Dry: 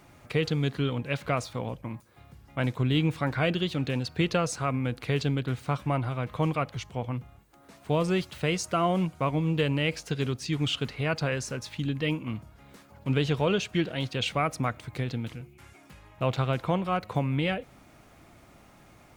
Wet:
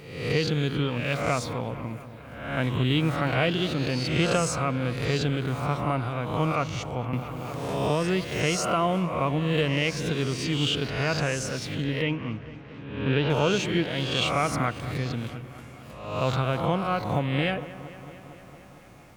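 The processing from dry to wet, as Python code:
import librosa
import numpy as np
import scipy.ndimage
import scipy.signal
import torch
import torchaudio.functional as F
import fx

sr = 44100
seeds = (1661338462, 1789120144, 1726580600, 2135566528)

p1 = fx.spec_swells(x, sr, rise_s=0.84)
p2 = fx.lowpass(p1, sr, hz=3500.0, slope=24, at=(12.02, 13.3))
p3 = p2 + fx.echo_wet_lowpass(p2, sr, ms=227, feedback_pct=72, hz=2400.0, wet_db=-15.5, dry=0)
y = fx.band_squash(p3, sr, depth_pct=70, at=(7.13, 8.25))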